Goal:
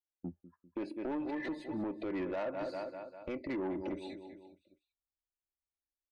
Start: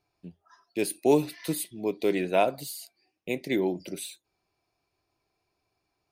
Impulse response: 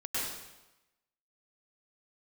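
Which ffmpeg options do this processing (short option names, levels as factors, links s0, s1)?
-af "agate=range=0.141:threshold=0.002:ratio=16:detection=peak,afftdn=nr=21:nf=-44,lowpass=f=4900:w=0.5412,lowpass=f=4900:w=1.3066,highshelf=f=2400:t=q:w=1.5:g=-13.5,aecho=1:1:3.5:0.63,aecho=1:1:198|396|594|792:0.133|0.0667|0.0333|0.0167,acompressor=threshold=0.0282:ratio=2,alimiter=level_in=2:limit=0.0631:level=0:latency=1:release=126,volume=0.501,asubboost=boost=8:cutoff=66,asoftclip=type=tanh:threshold=0.0133,volume=2"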